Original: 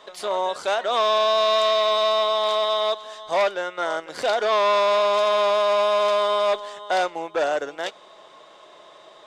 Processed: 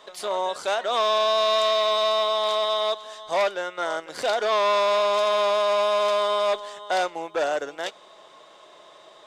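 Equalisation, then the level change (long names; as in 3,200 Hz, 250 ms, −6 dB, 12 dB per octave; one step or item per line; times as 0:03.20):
high-shelf EQ 6,600 Hz +5.5 dB
−2.0 dB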